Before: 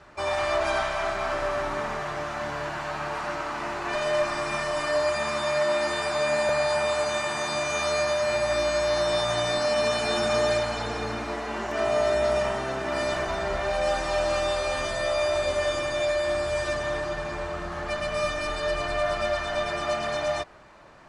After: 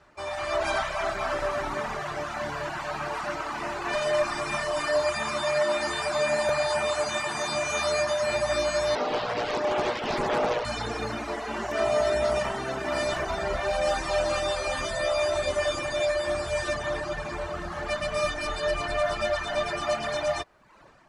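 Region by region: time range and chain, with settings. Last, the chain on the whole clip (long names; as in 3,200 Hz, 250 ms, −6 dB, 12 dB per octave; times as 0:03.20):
0:08.95–0:10.65: high-frequency loss of the air 260 metres + mains-hum notches 60/120/180/240/300/360/420/480/540 Hz + highs frequency-modulated by the lows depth 0.85 ms
whole clip: reverb reduction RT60 0.81 s; high-shelf EQ 9,400 Hz +4 dB; automatic gain control gain up to 8 dB; level −6.5 dB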